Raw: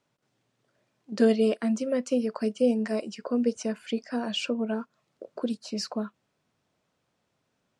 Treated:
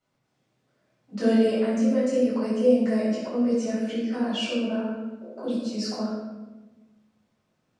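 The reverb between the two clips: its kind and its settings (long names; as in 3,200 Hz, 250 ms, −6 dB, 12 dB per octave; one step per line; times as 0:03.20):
rectangular room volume 680 cubic metres, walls mixed, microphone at 7.1 metres
level −11.5 dB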